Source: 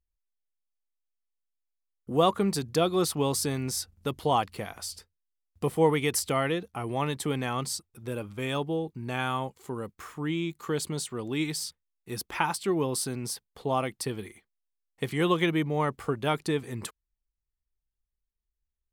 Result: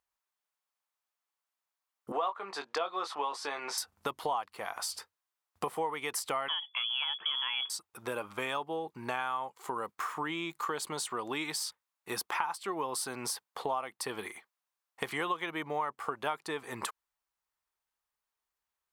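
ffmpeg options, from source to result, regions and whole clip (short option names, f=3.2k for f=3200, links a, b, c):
-filter_complex "[0:a]asettb=1/sr,asplit=3[a][b][c];[a]atrim=end=2.124[d];[b]atrim=start=2.12:end=3.78,asetpts=PTS-STARTPTS,afade=t=in:d=0.004:c=qsin,afade=t=out:st=1.656:d=0.004:c=qsin,highpass=490,lowpass=3.8k,asplit=2[e][f];[f]adelay=21,volume=-8dB[g];[e][g]amix=inputs=2:normalize=0,atrim=end_sample=73206[h];[c]atrim=start=3.776[i];[d][h]acrossfade=d=0.004:c1=hsin:c2=qsin[j];[j][i]acrossfade=d=0.004:c1=qsin:c2=hsin,asettb=1/sr,asplit=3[k][l][m];[k]atrim=end=6.484[n];[l]atrim=start=6.48:end=7.7,asetpts=PTS-STARTPTS,afade=t=in:d=0.004:c=qsin,afade=t=out:st=1.216:d=0.004:c=qsin,lowshelf=f=200:g=11,lowpass=f=3k:t=q:w=0.5098,lowpass=f=3k:t=q:w=0.6013,lowpass=f=3k:t=q:w=0.9,lowpass=f=3k:t=q:w=2.563,afreqshift=-3500[o];[m]atrim=start=7.696[p];[n][o]acrossfade=d=0.004:c1=hsin:c2=qsin[q];[q][p]acrossfade=d=0.004:c1=qsin:c2=hsin,highpass=f=730:p=1,equalizer=f=1k:w=0.89:g=12,acompressor=threshold=-37dB:ratio=5,volume=4.5dB"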